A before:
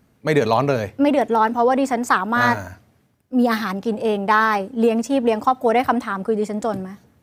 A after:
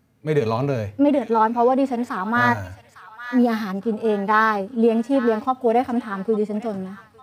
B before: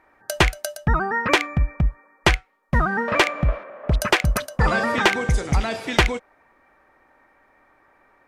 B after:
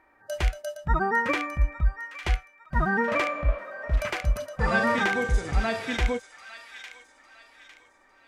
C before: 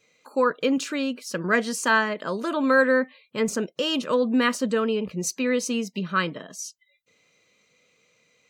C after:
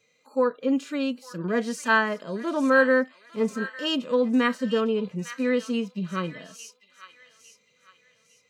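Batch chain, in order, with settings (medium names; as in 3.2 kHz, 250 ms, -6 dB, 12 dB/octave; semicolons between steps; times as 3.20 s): harmonic-percussive split percussive -17 dB; peaking EQ 100 Hz +4.5 dB 0.22 oct; feedback echo behind a high-pass 854 ms, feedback 36%, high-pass 1.6 kHz, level -10 dB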